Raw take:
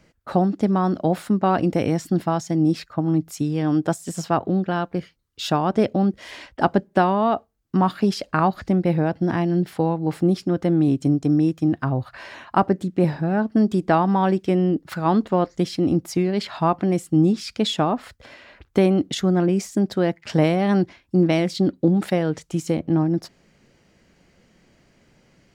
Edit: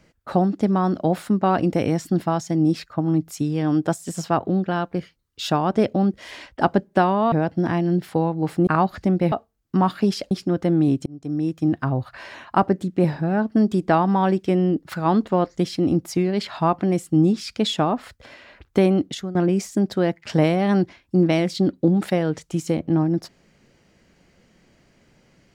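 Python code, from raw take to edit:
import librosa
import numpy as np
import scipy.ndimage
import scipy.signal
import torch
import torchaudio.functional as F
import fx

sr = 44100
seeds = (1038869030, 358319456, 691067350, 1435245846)

y = fx.edit(x, sr, fx.swap(start_s=7.32, length_s=0.99, other_s=8.96, other_length_s=1.35),
    fx.fade_in_span(start_s=11.06, length_s=0.63),
    fx.fade_out_to(start_s=18.97, length_s=0.38, floor_db=-17.0), tone=tone)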